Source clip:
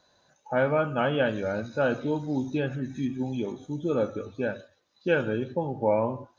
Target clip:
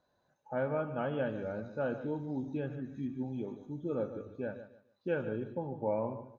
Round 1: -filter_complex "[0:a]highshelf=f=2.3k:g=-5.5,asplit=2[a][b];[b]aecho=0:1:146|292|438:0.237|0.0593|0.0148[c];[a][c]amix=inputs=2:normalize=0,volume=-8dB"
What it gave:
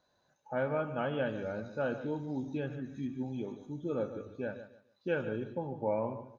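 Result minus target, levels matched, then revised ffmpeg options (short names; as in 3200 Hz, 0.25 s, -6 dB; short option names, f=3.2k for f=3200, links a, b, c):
4000 Hz band +5.5 dB
-filter_complex "[0:a]highshelf=f=2.3k:g=-14.5,asplit=2[a][b];[b]aecho=0:1:146|292|438:0.237|0.0593|0.0148[c];[a][c]amix=inputs=2:normalize=0,volume=-8dB"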